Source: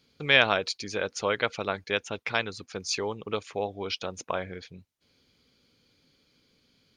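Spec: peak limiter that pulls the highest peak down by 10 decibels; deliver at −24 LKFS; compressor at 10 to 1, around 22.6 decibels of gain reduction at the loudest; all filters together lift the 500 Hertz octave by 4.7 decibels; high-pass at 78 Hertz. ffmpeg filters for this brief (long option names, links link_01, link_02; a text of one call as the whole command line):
ffmpeg -i in.wav -af "highpass=78,equalizer=frequency=500:width_type=o:gain=5.5,acompressor=threshold=-36dB:ratio=10,volume=19.5dB,alimiter=limit=-10dB:level=0:latency=1" out.wav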